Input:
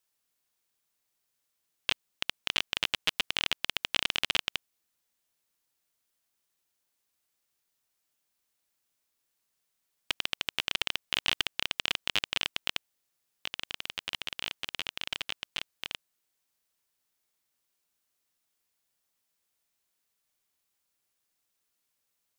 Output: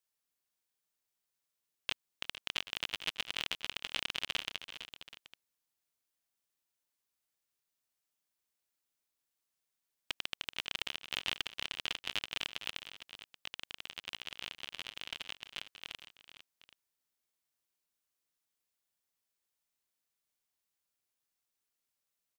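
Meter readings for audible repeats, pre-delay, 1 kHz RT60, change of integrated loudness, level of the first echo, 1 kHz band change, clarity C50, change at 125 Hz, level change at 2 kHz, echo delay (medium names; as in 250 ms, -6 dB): 3, no reverb, no reverb, -7.5 dB, -19.0 dB, -7.0 dB, no reverb, -7.0 dB, -7.0 dB, 331 ms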